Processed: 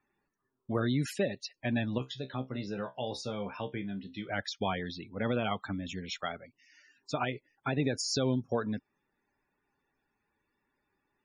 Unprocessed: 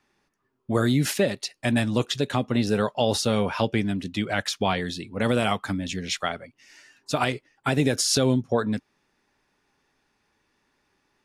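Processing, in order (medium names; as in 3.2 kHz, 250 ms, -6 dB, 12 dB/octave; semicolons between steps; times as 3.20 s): loudest bins only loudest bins 64; 1.98–4.29 s: feedback comb 65 Hz, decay 0.17 s, harmonics all, mix 90%; trim -8 dB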